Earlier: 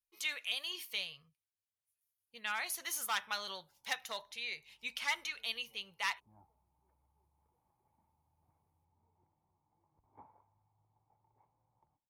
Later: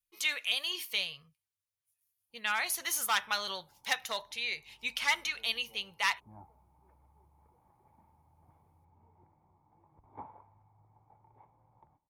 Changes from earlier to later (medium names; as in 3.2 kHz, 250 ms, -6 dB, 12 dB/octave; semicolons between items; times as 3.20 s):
speech +6.0 dB; background +12.0 dB